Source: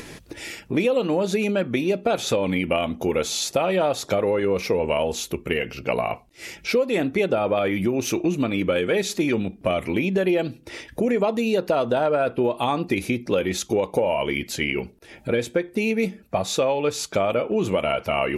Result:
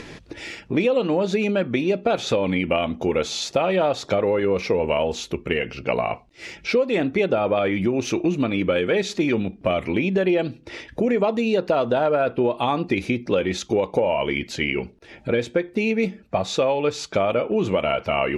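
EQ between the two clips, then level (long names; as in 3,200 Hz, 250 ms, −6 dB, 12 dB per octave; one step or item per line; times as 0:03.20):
low-pass filter 5,200 Hz 12 dB per octave
+1.0 dB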